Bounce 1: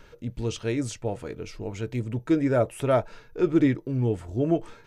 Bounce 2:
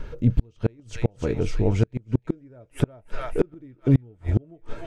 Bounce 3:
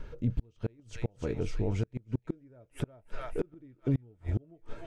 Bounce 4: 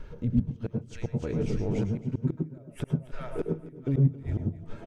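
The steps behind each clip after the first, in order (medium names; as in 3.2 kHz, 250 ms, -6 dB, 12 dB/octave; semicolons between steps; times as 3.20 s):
tilt EQ -2.5 dB/octave; feedback echo behind a high-pass 300 ms, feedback 58%, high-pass 1.5 kHz, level -8 dB; inverted gate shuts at -14 dBFS, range -36 dB; trim +7 dB
peak limiter -11.5 dBFS, peak gain reduction 5 dB; trim -8 dB
delay 271 ms -17 dB; on a send at -4.5 dB: reverberation RT60 0.15 s, pre-delay 98 ms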